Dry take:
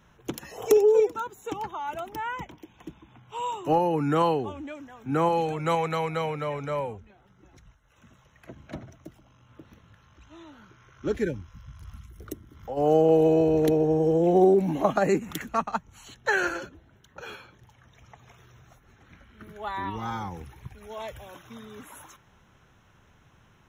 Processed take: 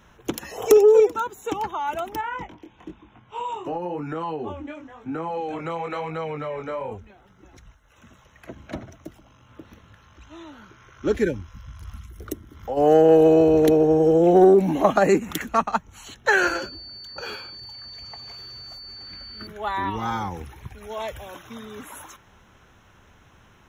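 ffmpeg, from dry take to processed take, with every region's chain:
-filter_complex "[0:a]asettb=1/sr,asplit=3[a][b][c];[a]atrim=end=2.214[d];[b]atrim=start=2.21:end=6.92,asetpts=PTS-STARTPTS,afade=t=in:d=0.004:c=qsin,afade=t=out:st=4.706:d=0.004:c=qsin,aemphasis=mode=reproduction:type=50fm,flanger=delay=18.5:depth=5.6:speed=1,acompressor=threshold=-31dB:ratio=6:attack=3.2:release=140:knee=1:detection=peak[e];[c]atrim=start=6.916[f];[d][e]acrossfade=d=0.004:c1=hsin:c2=qsin[g];[g][f]acrossfade=d=0.004:c1=qsin:c2=hsin,asettb=1/sr,asplit=3[h][i][j];[h]atrim=end=16.414[k];[i]atrim=start=16.41:end=19.47,asetpts=PTS-STARTPTS,afade=t=in:d=0.004:c=qsin,afade=t=out:st=3.056:d=0.004:c=qsin,asplit=2[l][m];[m]adelay=19,volume=-13.5dB[n];[l][n]amix=inputs=2:normalize=0,atrim=end_sample=134946,aeval=exprs='val(0)+0.00631*sin(2*PI*4500*n/s)':c=same[o];[j]atrim=start=19.466[p];[k][o]acrossfade=d=0.004:c1=hsin:c2=qsin[q];[q][p]acrossfade=d=0.004:c1=qsin:c2=hsin,equalizer=f=140:t=o:w=0.64:g=-6,acontrast=82,volume=-1dB"

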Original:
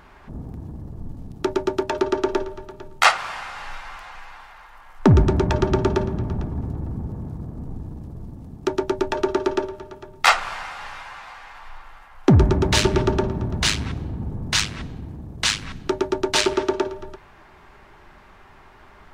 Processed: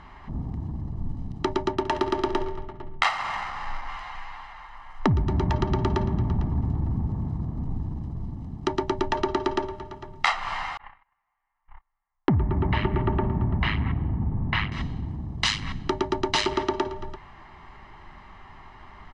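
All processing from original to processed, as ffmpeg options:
-filter_complex "[0:a]asettb=1/sr,asplit=3[a][b][c];[a]atrim=end=1.734[d];[b]atrim=start=1.73:end=3.89,asetpts=PTS-STARTPTS,afade=t=in:d=0.004:c=qsin,afade=t=out:st=2.156:d=0.004:c=qsin,adynamicsmooth=sensitivity=6.5:basefreq=520,aecho=1:1:68|136|204|272|340:0.2|0.106|0.056|0.0297|0.0157,atrim=end_sample=95256[e];[c]atrim=start=3.886[f];[d][e]acrossfade=d=0.004:c1=hsin:c2=qsin[g];[g][f]acrossfade=d=0.004:c1=qsin:c2=hsin,asettb=1/sr,asplit=3[h][i][j];[h]atrim=end=10.774[k];[i]atrim=start=10.77:end=14.72,asetpts=PTS-STARTPTS,afade=t=in:d=0.004:c=qsin,afade=t=out:st=3.946:d=0.004:c=qsin,lowpass=f=2.5k:w=0.5412,lowpass=f=2.5k:w=1.3066,agate=range=-40dB:threshold=-34dB:ratio=16:release=100:detection=peak[l];[j]atrim=start=14.716[m];[k][l]acrossfade=d=0.004:c1=hsin:c2=qsin[n];[n][m]acrossfade=d=0.004:c1=qsin:c2=hsin,lowpass=4.8k,aecho=1:1:1:0.54,acompressor=threshold=-19dB:ratio=10"

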